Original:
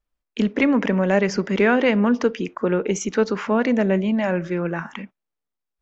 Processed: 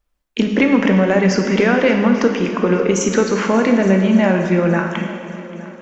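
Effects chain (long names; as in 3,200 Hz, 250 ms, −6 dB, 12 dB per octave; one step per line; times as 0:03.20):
downward compressor, threshold −19 dBFS, peak gain reduction 7.5 dB
echo machine with several playback heads 289 ms, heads all three, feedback 52%, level −22 dB
dense smooth reverb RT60 1.8 s, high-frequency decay 0.95×, DRR 3.5 dB
level +7.5 dB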